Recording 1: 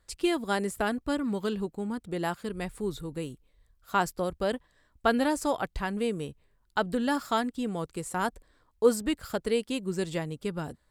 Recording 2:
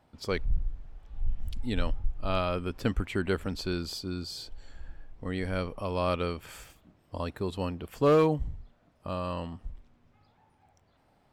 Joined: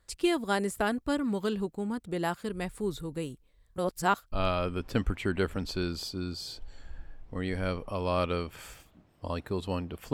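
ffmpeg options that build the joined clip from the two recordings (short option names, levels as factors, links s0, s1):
-filter_complex "[0:a]apad=whole_dur=10.13,atrim=end=10.13,asplit=2[s0][s1];[s0]atrim=end=3.762[s2];[s1]atrim=start=3.758:end=4.322,asetpts=PTS-STARTPTS,areverse[s3];[1:a]atrim=start=2.218:end=8.03[s4];[s2][s3]acrossfade=d=0.004:c1=hsin:c2=hsin[s5];[s5][s4]acrossfade=d=0.004:c1=hsin:c2=hsin"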